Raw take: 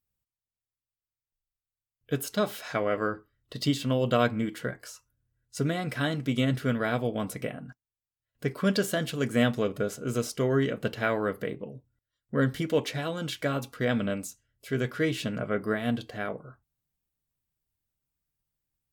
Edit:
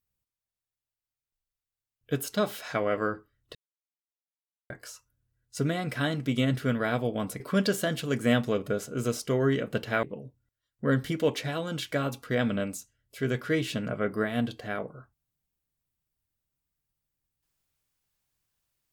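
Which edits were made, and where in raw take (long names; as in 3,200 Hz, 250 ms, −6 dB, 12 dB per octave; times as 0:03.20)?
0:03.55–0:04.70: silence
0:07.40–0:08.50: remove
0:11.13–0:11.53: remove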